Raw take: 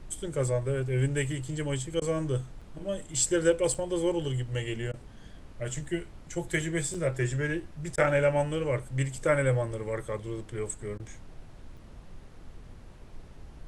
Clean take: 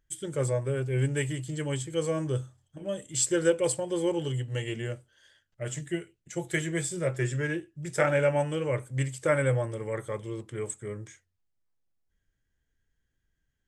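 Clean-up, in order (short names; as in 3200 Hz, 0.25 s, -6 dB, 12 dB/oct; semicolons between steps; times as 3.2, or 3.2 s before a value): interpolate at 2.61/3.74/6.94/11.77, 5.1 ms; interpolate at 2/4.92/7.96/10.98, 15 ms; noise print and reduce 29 dB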